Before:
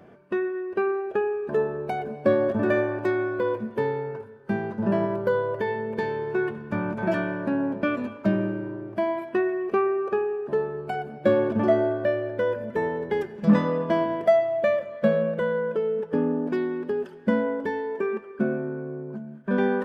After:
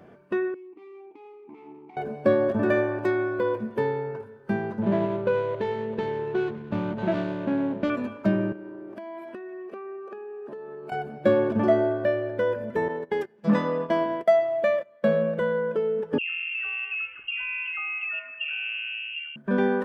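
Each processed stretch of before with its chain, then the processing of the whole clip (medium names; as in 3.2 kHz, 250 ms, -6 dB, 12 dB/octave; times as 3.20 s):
0.54–1.97 s: hard clipper -28.5 dBFS + transient shaper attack -11 dB, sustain -1 dB + vowel filter u
4.81–7.90 s: median filter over 25 samples + low-pass 3.5 kHz
8.52–10.92 s: high-pass 190 Hz 24 dB/octave + compression 16:1, threshold -35 dBFS
12.88–15.08 s: high-pass 240 Hz 6 dB/octave + gate -32 dBFS, range -17 dB
16.18–19.36 s: compression, threshold -27 dBFS + phase dispersion highs, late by 143 ms, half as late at 880 Hz + frequency inversion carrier 3 kHz
whole clip: none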